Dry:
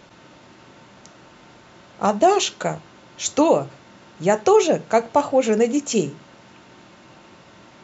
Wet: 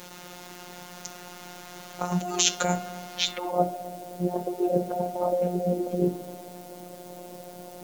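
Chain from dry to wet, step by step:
mains-hum notches 60/120/180/240/300/360 Hz
compressor whose output falls as the input rises −25 dBFS, ratio −1
low-pass filter sweep 6,600 Hz → 560 Hz, 0:03.11–0:03.67
bit-depth reduction 8 bits, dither triangular
phases set to zero 178 Hz
on a send: feedback echo with a low-pass in the loop 66 ms, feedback 84%, low-pass 2,000 Hz, level −15 dB
on the sum: level −1.5 dB

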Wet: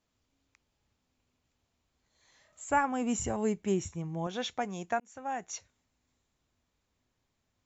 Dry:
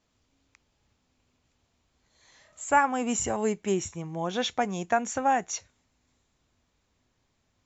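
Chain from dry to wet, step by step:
0:02.69–0:04.27: low-shelf EQ 260 Hz +9.5 dB
0:05.00–0:05.56: fade in
level −6.5 dB

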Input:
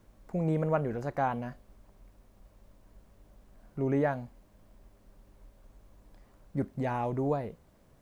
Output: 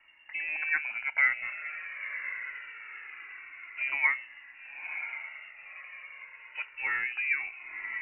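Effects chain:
three-way crossover with the lows and the highs turned down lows −18 dB, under 580 Hz, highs −21 dB, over 2,200 Hz
on a send: feedback delay with all-pass diffusion 994 ms, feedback 52%, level −11 dB
on the sum: voice inversion scrambler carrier 2,800 Hz
in parallel at −1.5 dB: downward compressor, threshold −41 dBFS, peak gain reduction 14 dB
on the sum: notch filter 1,200 Hz, Q 9.5
flanger whose copies keep moving one way falling 0.25 Hz
level +8.5 dB

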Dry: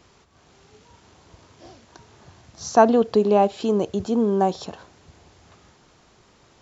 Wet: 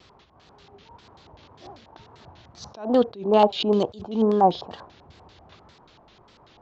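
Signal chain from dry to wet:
0:03.39–0:04.23: high shelf with overshoot 2,500 Hz +6.5 dB, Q 1.5
auto-filter low-pass square 5.1 Hz 920–3,900 Hz
tape wow and flutter 110 cents
level that may rise only so fast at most 140 dB per second

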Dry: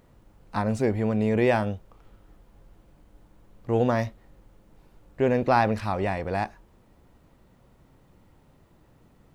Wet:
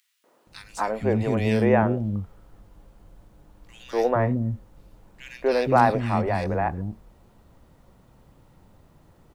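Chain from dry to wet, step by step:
three-band delay without the direct sound highs, mids, lows 240/470 ms, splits 310/2,200 Hz
level +3.5 dB

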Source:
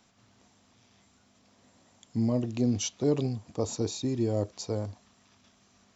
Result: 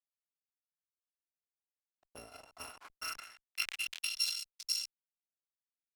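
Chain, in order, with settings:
samples in bit-reversed order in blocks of 256 samples
parametric band 860 Hz −6 dB 1.4 octaves
notch filter 740 Hz, Q 21
in parallel at +0.5 dB: downward compressor 5 to 1, threshold −39 dBFS, peak gain reduction 16.5 dB
on the sum: transient designer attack +6 dB, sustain −5 dB
centre clipping without the shift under −29.5 dBFS
harmonic generator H 4 −18 dB, 7 −17 dB, 8 −30 dB, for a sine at −8 dBFS
band-pass filter sweep 550 Hz → 5,100 Hz, 0:02.09–0:04.52
level that may fall only so fast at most 79 dB per second
level +3.5 dB

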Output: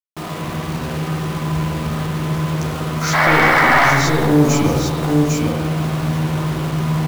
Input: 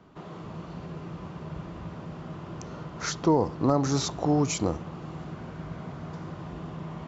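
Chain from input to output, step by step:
wavefolder on the positive side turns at −22 dBFS
on a send: single-tap delay 801 ms −6 dB
on the sum: sound drawn into the spectrogram noise, 0:03.13–0:03.90, 530–2,300 Hz −19 dBFS
in parallel at +0.5 dB: downward compressor, threshold −32 dBFS, peak gain reduction 16.5 dB
on the sum: double-tracking delay 13 ms −4 dB
soft clipping −15.5 dBFS, distortion −10 dB
bit reduction 6 bits
spring reverb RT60 1.2 s, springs 47/51 ms, chirp 50 ms, DRR −1.5 dB
level +3.5 dB

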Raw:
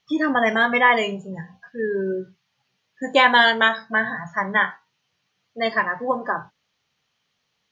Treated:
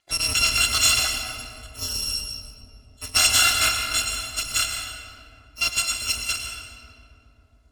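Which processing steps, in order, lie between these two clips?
samples in bit-reversed order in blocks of 256 samples
high-frequency loss of the air 67 metres
feedback echo with a low-pass in the loop 271 ms, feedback 80%, low-pass 1,200 Hz, level −15 dB
convolution reverb RT60 2.2 s, pre-delay 99 ms, DRR 3.5 dB
level +3.5 dB

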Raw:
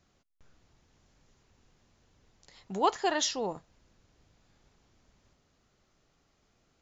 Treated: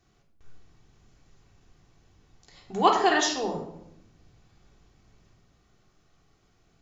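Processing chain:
0:02.76–0:03.21: parametric band 2,000 Hz +6 dB 2.4 octaves
rectangular room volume 2,000 cubic metres, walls furnished, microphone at 3.5 metres

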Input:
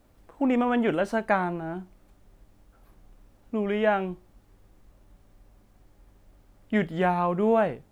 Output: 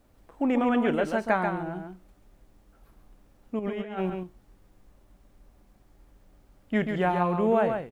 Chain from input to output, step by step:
0:03.59–0:04.10: compressor whose output falls as the input rises −30 dBFS, ratio −0.5
on a send: single-tap delay 136 ms −6 dB
on the sum: level −1.5 dB

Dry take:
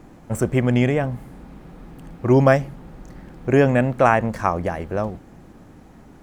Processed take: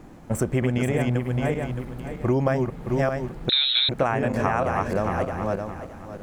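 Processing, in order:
feedback delay that plays each chunk backwards 309 ms, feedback 47%, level −2 dB
downward compressor 6 to 1, threshold −19 dBFS, peak gain reduction 10.5 dB
0:03.49–0:03.89: voice inversion scrambler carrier 4,000 Hz

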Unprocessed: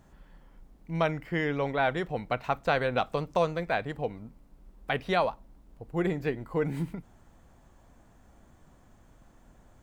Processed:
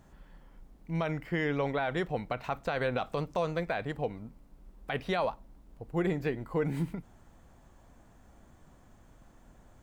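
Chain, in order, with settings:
brickwall limiter −21 dBFS, peak gain reduction 9 dB

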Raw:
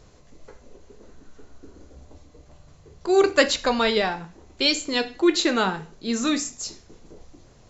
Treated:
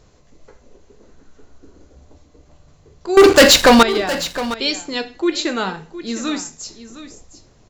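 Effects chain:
0:03.17–0:03.83: leveller curve on the samples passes 5
on a send: single-tap delay 712 ms −14 dB

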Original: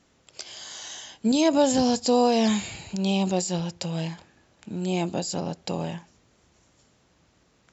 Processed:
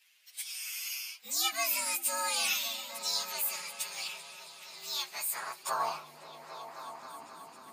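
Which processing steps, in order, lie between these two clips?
partials spread apart or drawn together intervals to 120%
high-pass filter sweep 2,500 Hz → 240 Hz, 0:05.06–0:07.08
echo whose low-pass opens from repeat to repeat 267 ms, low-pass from 200 Hz, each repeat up 1 octave, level −3 dB
level +4.5 dB

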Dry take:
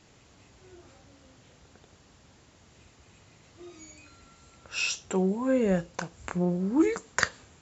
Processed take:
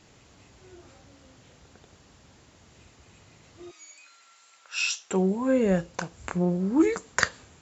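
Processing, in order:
0:03.71–0:05.11: high-pass filter 1,100 Hz 12 dB per octave
level +2 dB

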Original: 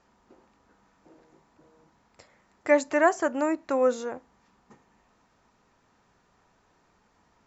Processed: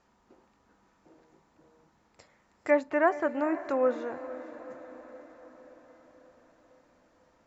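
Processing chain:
treble cut that deepens with the level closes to 2,500 Hz, closed at −22.5 dBFS
feedback delay with all-pass diffusion 488 ms, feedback 59%, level −14.5 dB
level −3 dB

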